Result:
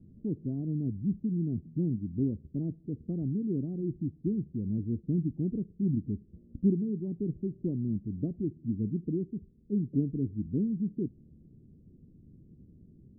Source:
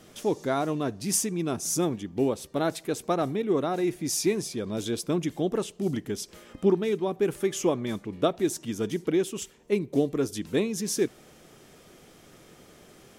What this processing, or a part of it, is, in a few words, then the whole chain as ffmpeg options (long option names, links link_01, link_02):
the neighbour's flat through the wall: -af "lowpass=frequency=250:width=0.5412,lowpass=frequency=250:width=1.3066,equalizer=frequency=81:width_type=o:width=0.79:gain=6,volume=2.5dB"